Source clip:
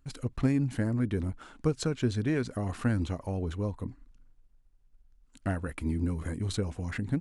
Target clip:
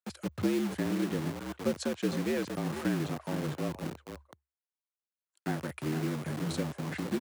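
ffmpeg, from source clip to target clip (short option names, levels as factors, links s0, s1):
-filter_complex "[0:a]asplit=2[s0][s1];[s1]adelay=466.5,volume=0.316,highshelf=f=4000:g=-10.5[s2];[s0][s2]amix=inputs=2:normalize=0,acrossover=split=460[s3][s4];[s3]acrusher=bits=5:mix=0:aa=0.000001[s5];[s4]agate=range=0.141:threshold=0.00112:ratio=16:detection=peak[s6];[s5][s6]amix=inputs=2:normalize=0,afreqshift=70,volume=0.708"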